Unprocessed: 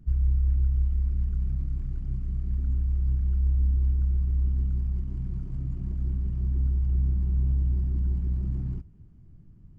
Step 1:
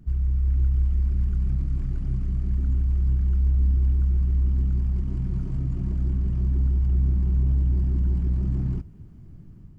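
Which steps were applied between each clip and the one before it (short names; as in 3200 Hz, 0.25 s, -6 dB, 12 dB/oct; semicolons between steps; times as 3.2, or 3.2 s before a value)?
low shelf 130 Hz -5.5 dB; AGC gain up to 4.5 dB; in parallel at -0.5 dB: limiter -26.5 dBFS, peak gain reduction 10.5 dB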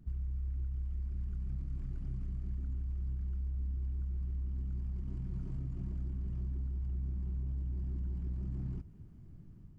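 compressor, threshold -26 dBFS, peak gain reduction 9 dB; gain -8 dB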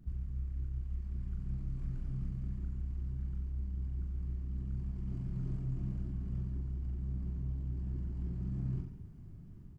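reverse bouncing-ball echo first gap 40 ms, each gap 1.15×, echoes 5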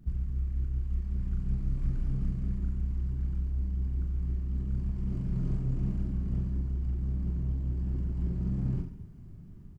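in parallel at -4 dB: soft clip -38.5 dBFS, distortion -11 dB; on the sum: doubler 35 ms -12 dB; upward expander 1.5:1, over -45 dBFS; gain +6 dB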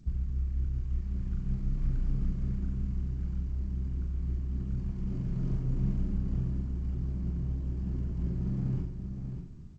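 echo 0.59 s -8 dB; G.722 64 kbps 16000 Hz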